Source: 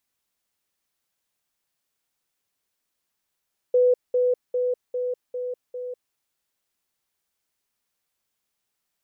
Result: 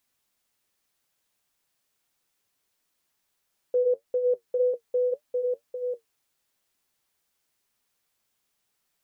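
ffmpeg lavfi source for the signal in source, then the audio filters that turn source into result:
-f lavfi -i "aevalsrc='pow(10,(-14.5-3*floor(t/0.4))/20)*sin(2*PI*497*t)*clip(min(mod(t,0.4),0.2-mod(t,0.4))/0.005,0,1)':d=2.4:s=44100"
-filter_complex "[0:a]asplit=2[s0][s1];[s1]acompressor=threshold=0.0447:ratio=6,volume=1.33[s2];[s0][s2]amix=inputs=2:normalize=0,alimiter=limit=0.168:level=0:latency=1:release=13,flanger=delay=7.1:depth=3:regen=-55:speed=1.9:shape=sinusoidal"

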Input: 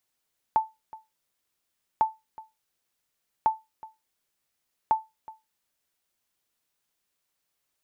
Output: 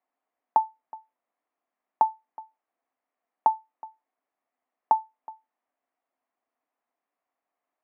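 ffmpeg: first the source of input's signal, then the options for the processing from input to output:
-f lavfi -i "aevalsrc='0.211*(sin(2*PI*880*mod(t,1.45))*exp(-6.91*mod(t,1.45)/0.21)+0.0944*sin(2*PI*880*max(mod(t,1.45)-0.37,0))*exp(-6.91*max(mod(t,1.45)-0.37,0)/0.21))':d=5.8:s=44100"
-af "highpass=f=250:w=0.5412,highpass=f=250:w=1.3066,equalizer=f=260:t=q:w=4:g=6,equalizer=f=380:t=q:w=4:g=-4,equalizer=f=710:t=q:w=4:g=10,equalizer=f=1100:t=q:w=4:g=4,equalizer=f=1500:t=q:w=4:g=-5,lowpass=f=2000:w=0.5412,lowpass=f=2000:w=1.3066"

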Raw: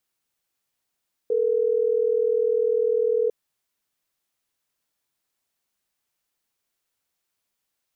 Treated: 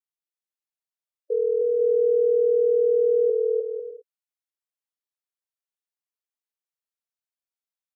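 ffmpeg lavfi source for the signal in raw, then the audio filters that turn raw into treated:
-f lavfi -i "aevalsrc='0.0841*(sin(2*PI*440*t)+sin(2*PI*480*t))*clip(min(mod(t,6),2-mod(t,6))/0.005,0,1)':d=3.12:s=44100"
-af "aecho=1:1:310|496|607.6|674.6|714.7:0.631|0.398|0.251|0.158|0.1,afftdn=nr=20:nf=-29,highpass=f=380:w=0.5412,highpass=f=380:w=1.3066"

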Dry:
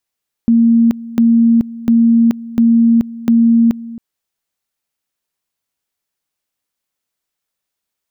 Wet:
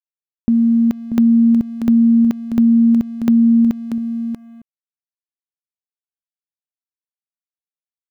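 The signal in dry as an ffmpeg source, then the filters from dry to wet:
-f lavfi -i "aevalsrc='pow(10,(-6.5-18.5*gte(mod(t,0.7),0.43))/20)*sin(2*PI*231*t)':d=3.5:s=44100"
-filter_complex "[0:a]acompressor=threshold=0.141:ratio=1.5,asplit=2[s0][s1];[s1]aecho=0:1:637:0.355[s2];[s0][s2]amix=inputs=2:normalize=0,aeval=exprs='sgn(val(0))*max(abs(val(0))-0.00282,0)':c=same"

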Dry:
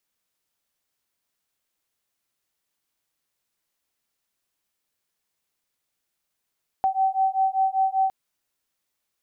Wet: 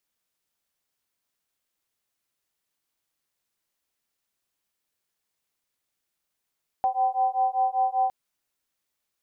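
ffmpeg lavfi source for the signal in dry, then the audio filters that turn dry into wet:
-f lavfi -i "aevalsrc='0.075*(sin(2*PI*765*t)+sin(2*PI*770.1*t))':d=1.26:s=44100"
-af "tremolo=f=240:d=0.4"

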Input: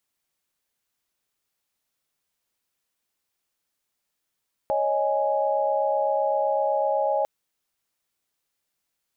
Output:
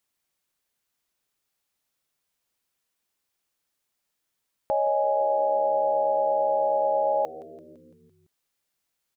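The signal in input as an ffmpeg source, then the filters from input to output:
-f lavfi -i "aevalsrc='0.0562*(sin(2*PI*554.37*t)+sin(2*PI*622.25*t)+sin(2*PI*830.61*t))':d=2.55:s=44100"
-filter_complex "[0:a]asplit=7[s0][s1][s2][s3][s4][s5][s6];[s1]adelay=169,afreqshift=-77,volume=0.119[s7];[s2]adelay=338,afreqshift=-154,volume=0.0724[s8];[s3]adelay=507,afreqshift=-231,volume=0.0442[s9];[s4]adelay=676,afreqshift=-308,volume=0.0269[s10];[s5]adelay=845,afreqshift=-385,volume=0.0164[s11];[s6]adelay=1014,afreqshift=-462,volume=0.01[s12];[s0][s7][s8][s9][s10][s11][s12]amix=inputs=7:normalize=0"

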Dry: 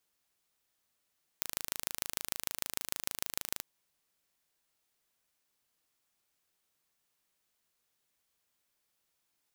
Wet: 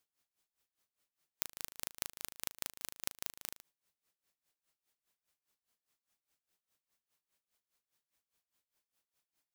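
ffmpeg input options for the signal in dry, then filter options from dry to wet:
-f lavfi -i "aevalsrc='0.631*eq(mod(n,1658),0)*(0.5+0.5*eq(mod(n,6632),0))':d=2.2:s=44100"
-af "aeval=exprs='val(0)*pow(10,-20*(0.5-0.5*cos(2*PI*4.9*n/s))/20)':c=same"

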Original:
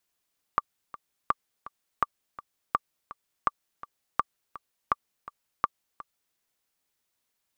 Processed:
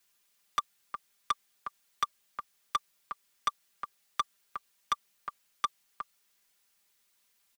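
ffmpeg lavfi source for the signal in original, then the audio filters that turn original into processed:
-f lavfi -i "aevalsrc='pow(10,(-9-17.5*gte(mod(t,2*60/166),60/166))/20)*sin(2*PI*1170*mod(t,60/166))*exp(-6.91*mod(t,60/166)/0.03)':d=5.78:s=44100"
-filter_complex "[0:a]aecho=1:1:5:0.65,acrossover=split=130|1200[s0][s1][s2];[s2]acontrast=68[s3];[s0][s1][s3]amix=inputs=3:normalize=0,asoftclip=type=tanh:threshold=0.0841"

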